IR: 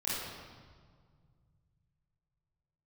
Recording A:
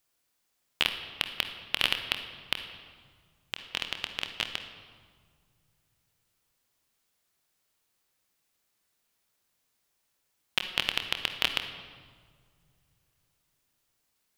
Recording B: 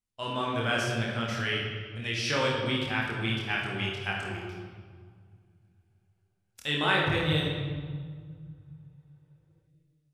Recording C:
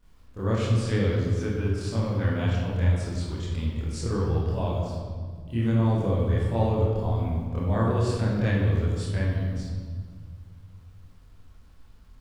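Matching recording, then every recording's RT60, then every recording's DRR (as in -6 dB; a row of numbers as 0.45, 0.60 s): C; 1.9, 1.9, 1.8 s; 5.5, -3.5, -10.0 dB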